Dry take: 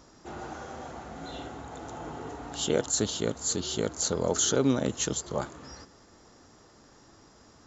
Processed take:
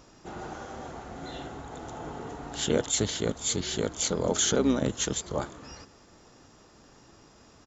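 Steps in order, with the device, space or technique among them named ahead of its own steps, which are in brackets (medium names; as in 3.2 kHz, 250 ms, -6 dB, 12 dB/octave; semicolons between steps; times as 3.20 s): octave pedal (harmony voices -12 st -8 dB)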